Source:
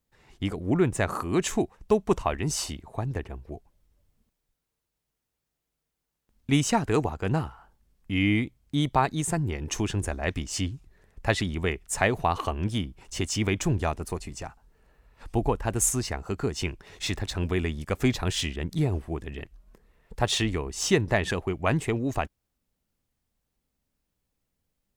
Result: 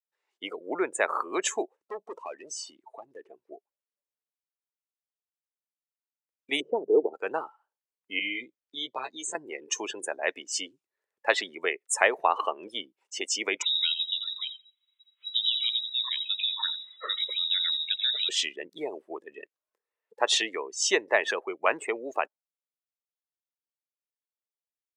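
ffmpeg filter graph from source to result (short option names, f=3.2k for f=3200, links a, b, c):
-filter_complex "[0:a]asettb=1/sr,asplit=3[a][b][c];[a]atrim=end=1.764[d];[b]atrim=start=1.76:end=3.52,asetpts=PTS-STARTPTS,afade=t=in:d=0.004:c=qsin,afade=t=out:st=1.756:d=0.004:c=qsin,lowpass=11k,volume=25.5dB,asoftclip=hard,volume=-25.5dB,acompressor=threshold=-33dB:ratio=6:attack=3.2:release=140:knee=1:detection=peak[e];[c]atrim=start=3.516[f];[d][e]acrossfade=d=0.004:c1=hsin:c2=qsin[g];[g][f]acrossfade=d=0.004:c1=qsin:c2=hsin,asettb=1/sr,asplit=3[h][i][j];[h]atrim=end=6.604[k];[i]atrim=start=6.6:end=7.14,asetpts=PTS-STARTPTS,afade=t=in:d=0.004:c=qsin,afade=t=out:st=0.536:d=0.004:c=qsin,lowpass=f=400:t=q:w=2.6,bandreject=f=50:t=h:w=6,bandreject=f=100:t=h:w=6,bandreject=f=150:t=h:w=6,bandreject=f=200:t=h:w=6[l];[j]atrim=start=7.136[m];[k][l]acrossfade=d=0.004:c1=hsin:c2=qsin[n];[n][m]acrossfade=d=0.004:c1=qsin:c2=hsin,asettb=1/sr,asplit=3[o][p][q];[o]atrim=end=8.194[r];[p]atrim=start=8.19:end=9.35,asetpts=PTS-STARTPTS,afade=t=in:d=0.004:c=qsin,afade=t=out:st=1.156:d=0.004:c=qsin,lowpass=f=7.1k:w=0.5412,lowpass=f=7.1k:w=1.3066,acrossover=split=180|3000[s][t][u];[t]acompressor=threshold=-42dB:ratio=2:attack=3.2:release=140:knee=2.83:detection=peak[v];[s][v][u]amix=inputs=3:normalize=0,asplit=2[w][x];[x]adelay=16,volume=-3dB[y];[w][y]amix=inputs=2:normalize=0,atrim=end_sample=51156[z];[q]atrim=start=9.346[aa];[r][z]acrossfade=d=0.004:c1=hsin:c2=qsin[ab];[ab][aa]acrossfade=d=0.004:c1=qsin:c2=hsin,asettb=1/sr,asplit=3[ac][ad][ae];[ac]atrim=end=13.624[af];[ad]atrim=start=13.62:end=18.29,asetpts=PTS-STARTPTS,afade=t=in:d=0.004:c=qsin,afade=t=out:st=4.666:d=0.004:c=qsin,acompressor=threshold=-27dB:ratio=4:attack=3.2:release=140:knee=1:detection=peak,asplit=2[ag][ah];[ah]adelay=86,lowpass=f=2.5k:p=1,volume=-7.5dB,asplit=2[ai][aj];[aj]adelay=86,lowpass=f=2.5k:p=1,volume=0.38,asplit=2[ak][al];[al]adelay=86,lowpass=f=2.5k:p=1,volume=0.38,asplit=2[am][an];[an]adelay=86,lowpass=f=2.5k:p=1,volume=0.38[ao];[ag][ai][ak][am][ao]amix=inputs=5:normalize=0,atrim=end_sample=205947,lowpass=f=3.3k:t=q:w=0.5098,lowpass=f=3.3k:t=q:w=0.6013,lowpass=f=3.3k:t=q:w=0.9,lowpass=f=3.3k:t=q:w=2.563,afreqshift=-3900[ap];[ae]atrim=start=18.286[aq];[af][ap]acrossfade=d=0.004:c1=hsin:c2=qsin[ar];[ar][aq]acrossfade=d=0.004:c1=qsin:c2=hsin,afftdn=nr=24:nf=-36,highpass=f=460:w=0.5412,highpass=f=460:w=1.3066,equalizer=f=720:t=o:w=0.22:g=-5.5,volume=3.5dB"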